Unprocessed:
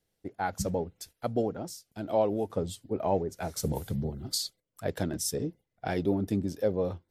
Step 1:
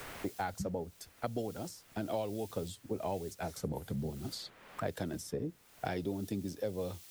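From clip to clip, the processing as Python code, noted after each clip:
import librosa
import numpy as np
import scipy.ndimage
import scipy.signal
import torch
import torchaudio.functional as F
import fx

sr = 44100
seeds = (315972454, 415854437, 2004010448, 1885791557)

y = fx.quant_dither(x, sr, seeds[0], bits=10, dither='triangular')
y = fx.band_squash(y, sr, depth_pct=100)
y = F.gain(torch.from_numpy(y), -7.5).numpy()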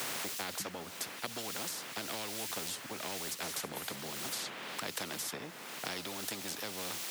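y = scipy.signal.sosfilt(scipy.signal.butter(4, 190.0, 'highpass', fs=sr, output='sos'), x)
y = fx.high_shelf(y, sr, hz=5900.0, db=-10.5)
y = fx.spectral_comp(y, sr, ratio=4.0)
y = F.gain(torch.from_numpy(y), 4.0).numpy()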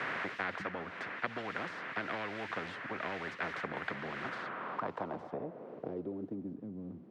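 y = fx.high_shelf(x, sr, hz=6700.0, db=-7.0)
y = fx.notch(y, sr, hz=850.0, q=18.0)
y = fx.filter_sweep_lowpass(y, sr, from_hz=1800.0, to_hz=240.0, start_s=4.19, end_s=6.63, q=2.2)
y = F.gain(torch.from_numpy(y), 2.0).numpy()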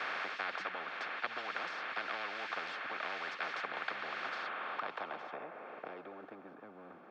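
y = fx.ladder_bandpass(x, sr, hz=1300.0, resonance_pct=25)
y = fx.notch_comb(y, sr, f0_hz=980.0)
y = fx.spectral_comp(y, sr, ratio=2.0)
y = F.gain(torch.from_numpy(y), 11.0).numpy()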